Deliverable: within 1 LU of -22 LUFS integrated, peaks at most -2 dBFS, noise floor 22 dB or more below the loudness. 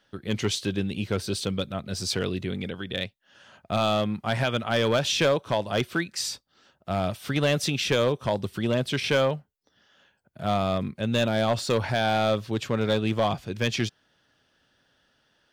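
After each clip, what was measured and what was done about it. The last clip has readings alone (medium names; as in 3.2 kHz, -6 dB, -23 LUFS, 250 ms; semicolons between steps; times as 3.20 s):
clipped samples 0.7%; clipping level -16.0 dBFS; loudness -26.5 LUFS; peak level -16.0 dBFS; loudness target -22.0 LUFS
-> clip repair -16 dBFS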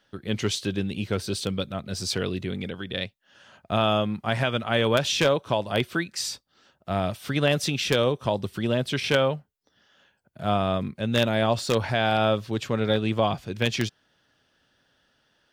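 clipped samples 0.0%; loudness -26.0 LUFS; peak level -7.0 dBFS; loudness target -22.0 LUFS
-> trim +4 dB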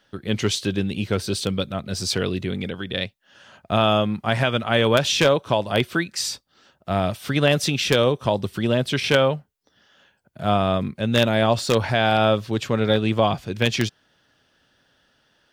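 loudness -22.0 LUFS; peak level -3.0 dBFS; noise floor -65 dBFS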